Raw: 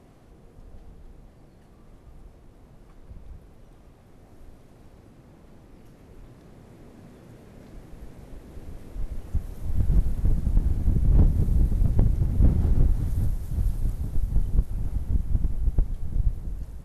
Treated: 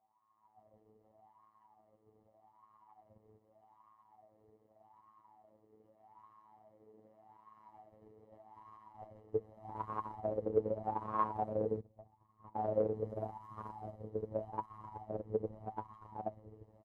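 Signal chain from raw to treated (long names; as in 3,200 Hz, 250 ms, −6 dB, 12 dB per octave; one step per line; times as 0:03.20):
far-end echo of a speakerphone 130 ms, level −10 dB
0:11.80–0:12.56: noise gate −13 dBFS, range −19 dB
comb filter 1 ms, depth 88%
wave folding −13.5 dBFS
power curve on the samples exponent 1.4
automatic gain control gain up to 13 dB
phases set to zero 108 Hz
LFO wah 0.83 Hz 450–1,100 Hz, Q 15
level +5 dB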